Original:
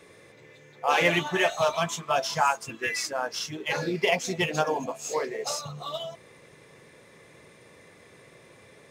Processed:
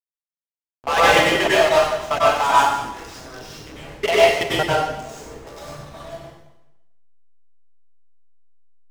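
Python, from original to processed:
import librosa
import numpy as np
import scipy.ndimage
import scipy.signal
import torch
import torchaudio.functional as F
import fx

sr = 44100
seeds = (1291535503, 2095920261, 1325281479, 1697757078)

y = fx.peak_eq(x, sr, hz=2400.0, db=-3.5, octaves=0.31)
y = fx.level_steps(y, sr, step_db=24)
y = fx.leveller(y, sr, passes=3)
y = fx.notch_comb(y, sr, f0_hz=180.0)
y = fx.backlash(y, sr, play_db=-31.5)
y = fx.rev_plate(y, sr, seeds[0], rt60_s=0.92, hf_ratio=0.95, predelay_ms=85, drr_db=-8.0)
y = F.gain(torch.from_numpy(y), -1.0).numpy()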